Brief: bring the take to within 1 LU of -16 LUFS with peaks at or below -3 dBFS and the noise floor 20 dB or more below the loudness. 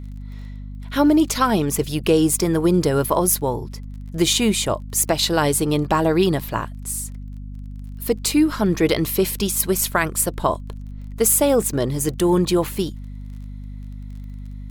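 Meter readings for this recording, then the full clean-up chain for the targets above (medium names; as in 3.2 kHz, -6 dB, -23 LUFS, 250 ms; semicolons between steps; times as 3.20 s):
tick rate 21 per s; hum 50 Hz; highest harmonic 250 Hz; hum level -31 dBFS; loudness -19.5 LUFS; peak level -4.0 dBFS; loudness target -16.0 LUFS
-> de-click; hum notches 50/100/150/200/250 Hz; trim +3.5 dB; peak limiter -3 dBFS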